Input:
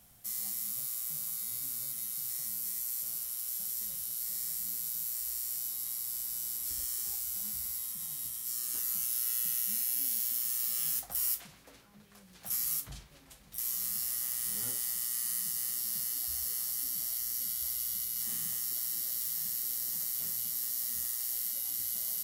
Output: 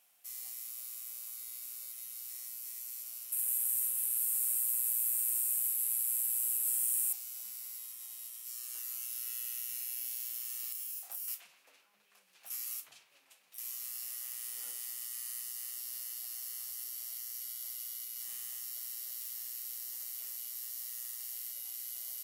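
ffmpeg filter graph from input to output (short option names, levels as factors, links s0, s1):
-filter_complex "[0:a]asettb=1/sr,asplit=3[s0][s1][s2];[s0]atrim=end=3.324[s3];[s1]atrim=start=3.32:end=7.13,asetpts=PTS-STARTPTS,afade=t=in:d=0.004:c=qsin,afade=t=out:st=3.806:d=0.004:c=qsin,highshelf=f=7100:t=q:w=3:g=9,acrusher=bits=6:mix=0:aa=0.5[s4];[s2]atrim=start=7.126[s5];[s3][s4]acrossfade=d=0.004:c1=hsin:c2=qsin[s6];[s6][s5]acrossfade=d=0.004:c1=qsin:c2=hsin,asettb=1/sr,asplit=3[s7][s8][s9];[s7]atrim=end=10.724[s10];[s8]atrim=start=10.72:end=11.28,asetpts=PTS-STARTPTS,afade=t=in:d=0.004:c=qsin,afade=t=out:st=0.556:d=0.004:c=qsin,highshelf=f=6100:g=9.5,acompressor=threshold=0.0316:ratio=12:attack=3.2:release=140:knee=1:detection=peak,asplit=2[s11][s12];[s12]adelay=29,volume=0.631[s13];[s11][s13]amix=inputs=2:normalize=0,atrim=end_sample=24696[s14];[s9]atrim=start=11.276[s15];[s10][s14]acrossfade=d=0.004:c1=hsin:c2=qsin[s16];[s16][s15]acrossfade=d=0.004:c1=qsin:c2=hsin,highpass=580,equalizer=f=2600:t=o:w=0.4:g=8,volume=0.422"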